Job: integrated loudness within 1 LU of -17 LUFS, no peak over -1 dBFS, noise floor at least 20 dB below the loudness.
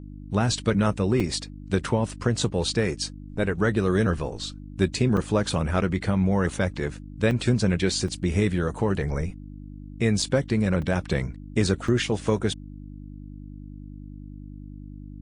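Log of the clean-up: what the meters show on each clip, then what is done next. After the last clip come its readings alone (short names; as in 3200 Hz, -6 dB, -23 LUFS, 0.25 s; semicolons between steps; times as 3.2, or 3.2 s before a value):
dropouts 7; longest dropout 3.6 ms; hum 50 Hz; harmonics up to 300 Hz; hum level -39 dBFS; loudness -25.5 LUFS; peak -7.5 dBFS; loudness target -17.0 LUFS
-> interpolate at 1.2/5.17/7.31/8.08/10.22/10.82/11.88, 3.6 ms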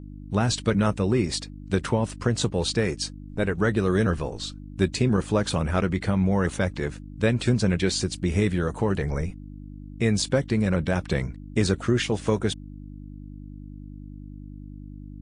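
dropouts 0; hum 50 Hz; harmonics up to 300 Hz; hum level -39 dBFS
-> de-hum 50 Hz, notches 6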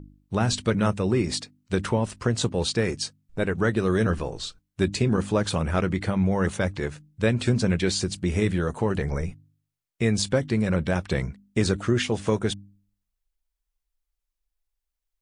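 hum none; loudness -25.5 LUFS; peak -8.0 dBFS; loudness target -17.0 LUFS
-> gain +8.5 dB; limiter -1 dBFS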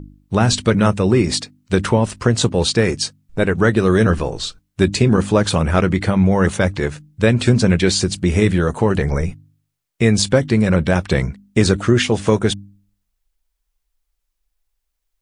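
loudness -17.0 LUFS; peak -1.0 dBFS; noise floor -75 dBFS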